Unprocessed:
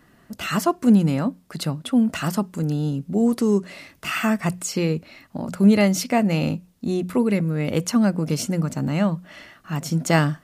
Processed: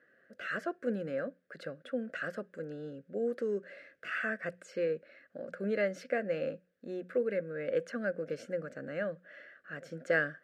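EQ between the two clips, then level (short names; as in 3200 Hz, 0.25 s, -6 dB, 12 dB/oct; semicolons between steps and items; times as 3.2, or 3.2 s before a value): double band-pass 920 Hz, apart 1.6 oct; notch 980 Hz, Q 21; 0.0 dB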